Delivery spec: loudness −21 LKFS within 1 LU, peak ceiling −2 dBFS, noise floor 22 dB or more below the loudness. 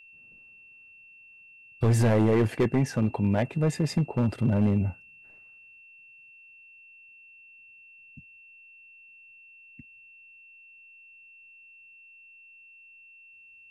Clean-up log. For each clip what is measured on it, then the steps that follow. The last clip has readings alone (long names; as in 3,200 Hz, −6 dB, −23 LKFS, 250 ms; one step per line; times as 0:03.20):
share of clipped samples 0.9%; peaks flattened at −17.0 dBFS; interfering tone 2,700 Hz; level of the tone −50 dBFS; integrated loudness −25.5 LKFS; sample peak −17.0 dBFS; target loudness −21.0 LKFS
→ clipped peaks rebuilt −17 dBFS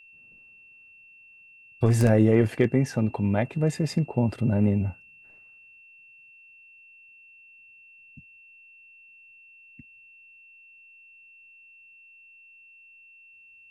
share of clipped samples 0.0%; interfering tone 2,700 Hz; level of the tone −50 dBFS
→ notch filter 2,700 Hz, Q 30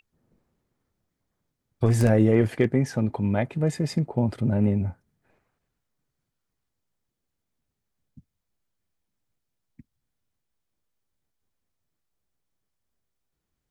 interfering tone none found; integrated loudness −24.0 LKFS; sample peak −8.0 dBFS; target loudness −21.0 LKFS
→ level +3 dB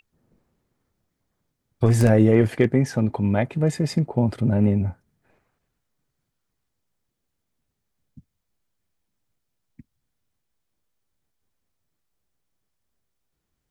integrated loudness −21.0 LKFS; sample peak −5.0 dBFS; background noise floor −79 dBFS